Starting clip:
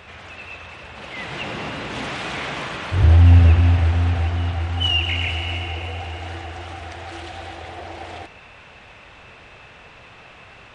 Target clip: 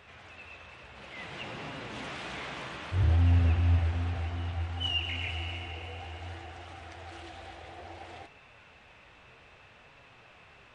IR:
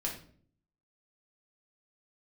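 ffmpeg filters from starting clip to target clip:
-af "flanger=delay=7.1:depth=9.5:regen=64:speed=0.6:shape=sinusoidal,volume=-7dB"

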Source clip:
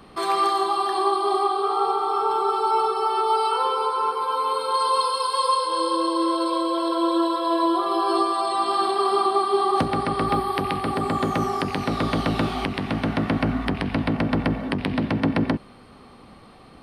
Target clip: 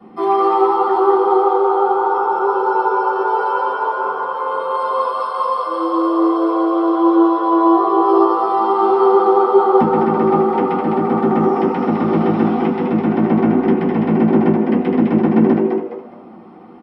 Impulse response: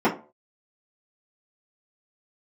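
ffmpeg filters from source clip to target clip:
-filter_complex "[0:a]asplit=5[link_01][link_02][link_03][link_04][link_05];[link_02]adelay=207,afreqshift=110,volume=-4.5dB[link_06];[link_03]adelay=414,afreqshift=220,volume=-14.7dB[link_07];[link_04]adelay=621,afreqshift=330,volume=-24.8dB[link_08];[link_05]adelay=828,afreqshift=440,volume=-35dB[link_09];[link_01][link_06][link_07][link_08][link_09]amix=inputs=5:normalize=0[link_10];[1:a]atrim=start_sample=2205[link_11];[link_10][link_11]afir=irnorm=-1:irlink=0,volume=-16dB"

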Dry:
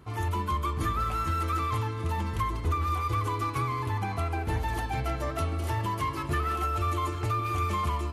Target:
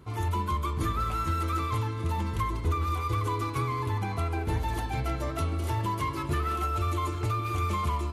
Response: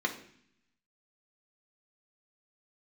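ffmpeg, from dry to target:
-filter_complex "[0:a]asplit=2[link_01][link_02];[1:a]atrim=start_sample=2205,asetrate=74970,aresample=44100,lowpass=4400[link_03];[link_02][link_03]afir=irnorm=-1:irlink=0,volume=-13.5dB[link_04];[link_01][link_04]amix=inputs=2:normalize=0"

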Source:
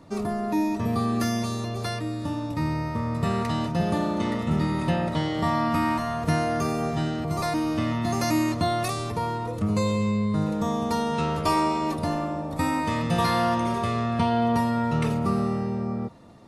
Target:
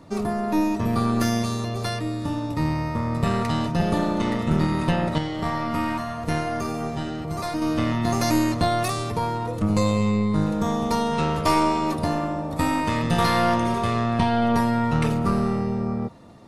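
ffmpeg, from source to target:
ffmpeg -i in.wav -filter_complex "[0:a]aeval=exprs='0.299*(cos(1*acos(clip(val(0)/0.299,-1,1)))-cos(1*PI/2))+0.106*(cos(2*acos(clip(val(0)/0.299,-1,1)))-cos(2*PI/2))':channel_layout=same,asettb=1/sr,asplit=3[link_01][link_02][link_03];[link_01]atrim=end=5.184[link_04];[link_02]atrim=start=5.18:end=7.62,asetpts=PTS-STARTPTS,afade=type=in:duration=0.004:curve=qsin,afade=type=out:start_time=2.436:duration=0.004:curve=qsin,flanger=delay=8.6:depth=2.1:regen=-67:speed=1.2:shape=triangular[link_05];[link_03]atrim=start=7.616[link_06];[link_04][link_05]acrossfade=duration=0.004:curve1=hsin:curve2=qsin[link_07];[link_07][link_06]acrossfade=duration=0.004:curve1=qsin:curve2=hsin,volume=2.5dB" out.wav

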